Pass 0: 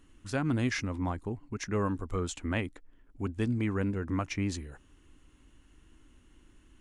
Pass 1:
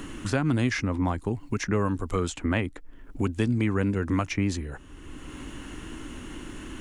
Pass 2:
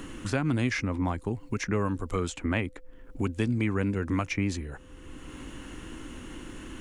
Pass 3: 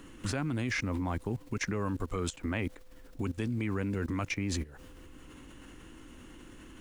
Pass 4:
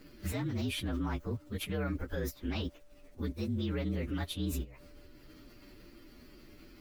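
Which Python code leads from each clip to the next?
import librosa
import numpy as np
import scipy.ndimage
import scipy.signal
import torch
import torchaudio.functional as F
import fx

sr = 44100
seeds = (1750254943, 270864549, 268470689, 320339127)

y1 = fx.band_squash(x, sr, depth_pct=70)
y1 = y1 * librosa.db_to_amplitude(5.5)
y2 = fx.dynamic_eq(y1, sr, hz=2300.0, q=4.9, threshold_db=-49.0, ratio=4.0, max_db=4)
y2 = y2 + 10.0 ** (-56.0 / 20.0) * np.sin(2.0 * np.pi * 510.0 * np.arange(len(y2)) / sr)
y2 = y2 * librosa.db_to_amplitude(-2.5)
y3 = fx.dmg_noise_colour(y2, sr, seeds[0], colour='pink', level_db=-60.0)
y3 = fx.level_steps(y3, sr, step_db=18)
y3 = y3 * librosa.db_to_amplitude(4.0)
y4 = fx.partial_stretch(y3, sr, pct=119)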